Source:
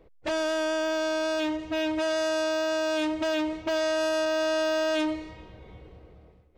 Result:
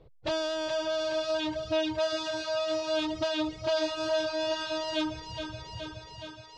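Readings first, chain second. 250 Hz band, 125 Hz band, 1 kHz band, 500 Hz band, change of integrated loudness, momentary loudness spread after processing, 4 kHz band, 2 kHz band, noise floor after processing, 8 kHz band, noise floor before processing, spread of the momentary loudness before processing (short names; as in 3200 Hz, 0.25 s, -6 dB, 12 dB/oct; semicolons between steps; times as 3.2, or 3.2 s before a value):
-5.0 dB, n/a, -3.0 dB, -3.0 dB, -3.5 dB, 11 LU, +0.5 dB, -6.0 dB, -51 dBFS, -4.5 dB, -56 dBFS, 4 LU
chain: graphic EQ 125/250/2000/4000 Hz +11/-6/-7/+8 dB; on a send: thinning echo 0.42 s, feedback 75%, high-pass 190 Hz, level -8.5 dB; on the sum: reverb removal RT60 0.88 s; air absorption 89 m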